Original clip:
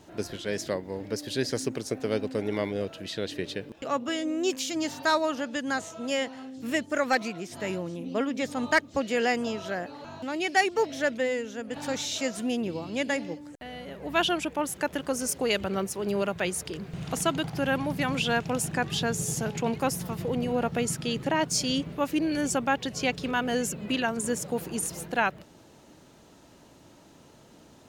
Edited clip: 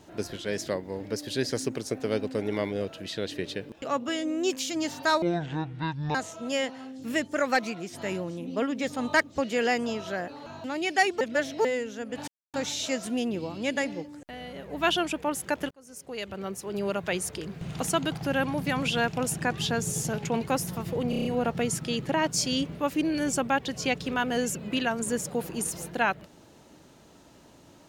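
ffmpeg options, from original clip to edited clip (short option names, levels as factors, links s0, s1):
-filter_complex "[0:a]asplit=12[s0][s1][s2][s3][s4][s5][s6][s7][s8][s9][s10][s11];[s0]atrim=end=5.224[s12];[s1]atrim=start=5.22:end=5.73,asetpts=PTS-STARTPTS,asetrate=24255,aresample=44100[s13];[s2]atrim=start=5.726:end=10.792[s14];[s3]atrim=start=10.788:end=11.232,asetpts=PTS-STARTPTS,areverse[s15];[s4]atrim=start=11.228:end=11.86,asetpts=PTS-STARTPTS,afade=t=out:st=0.628:d=0.004:c=hsin,apad=pad_dur=0.26[s16];[s5]atrim=start=11.86:end=15.03,asetpts=PTS-STARTPTS,afade=t=in:d=0.004:c=hsin,afade=t=out:st=3.166:d=0.004:c=hsin[s17];[s6]atrim=start=15.03:end=20.452,asetpts=PTS-STARTPTS,afade=t=in:d=1.44[s18];[s7]atrim=start=20.418:end=20.452[s19];[s8]atrim=start=20.418:end=20.452[s20];[s9]atrim=start=20.418:end=20.452[s21];[s10]atrim=start=20.418:end=20.452[s22];[s11]atrim=start=20.418[s23];[s12][s13]acrossfade=d=0.004:c1=hsin:c2=hsin[s24];[s24][s14]acrossfade=d=0.004:c1=hsin:c2=hsin[s25];[s25][s15]acrossfade=d=0.004:c1=hsin:c2=hsin[s26];[s16][s17][s18]concat=n=3:v=0:a=1[s27];[s26][s27]acrossfade=d=0.004:c1=hsin:c2=hsin[s28];[s28][s19]acrossfade=d=0.004:c1=hsin:c2=hsin[s29];[s29][s20]acrossfade=d=0.004:c1=hsin:c2=hsin[s30];[s30][s21]acrossfade=d=0.004:c1=hsin:c2=hsin[s31];[s31][s22]acrossfade=d=0.004:c1=hsin:c2=hsin[s32];[s32][s23]acrossfade=d=0.004:c1=hsin:c2=hsin"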